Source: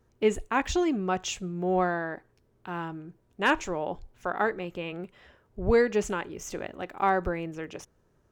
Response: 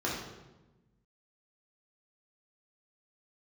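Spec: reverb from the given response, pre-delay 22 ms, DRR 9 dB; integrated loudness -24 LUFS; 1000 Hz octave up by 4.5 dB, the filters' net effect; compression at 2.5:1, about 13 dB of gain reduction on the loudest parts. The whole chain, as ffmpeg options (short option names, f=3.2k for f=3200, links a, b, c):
-filter_complex "[0:a]equalizer=f=1k:t=o:g=6,acompressor=threshold=-36dB:ratio=2.5,asplit=2[a][b];[1:a]atrim=start_sample=2205,adelay=22[c];[b][c]afir=irnorm=-1:irlink=0,volume=-17dB[d];[a][d]amix=inputs=2:normalize=0,volume=12.5dB"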